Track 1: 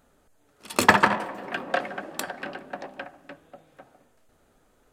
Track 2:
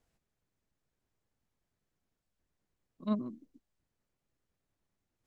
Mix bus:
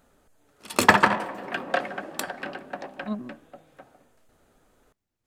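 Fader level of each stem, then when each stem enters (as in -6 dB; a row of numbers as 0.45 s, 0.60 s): +0.5 dB, +0.5 dB; 0.00 s, 0.00 s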